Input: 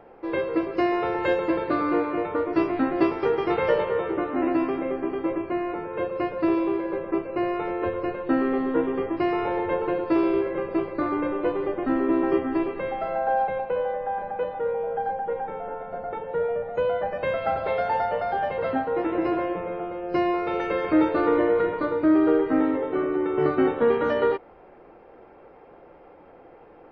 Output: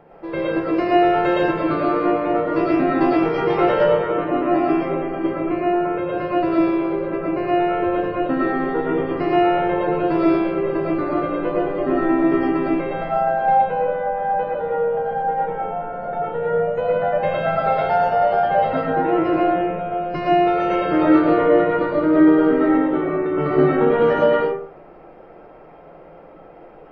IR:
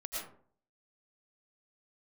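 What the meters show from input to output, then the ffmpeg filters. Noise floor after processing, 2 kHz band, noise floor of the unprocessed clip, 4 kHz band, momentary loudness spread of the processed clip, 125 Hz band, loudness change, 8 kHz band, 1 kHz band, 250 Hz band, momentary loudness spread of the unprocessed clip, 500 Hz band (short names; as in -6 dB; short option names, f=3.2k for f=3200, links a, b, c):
-43 dBFS, +5.5 dB, -50 dBFS, +6.5 dB, 7 LU, +10.0 dB, +6.0 dB, n/a, +8.0 dB, +5.5 dB, 7 LU, +5.5 dB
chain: -filter_complex "[0:a]equalizer=f=160:w=4.2:g=11.5[a];[1:a]atrim=start_sample=2205[b];[a][b]afir=irnorm=-1:irlink=0,volume=4.5dB"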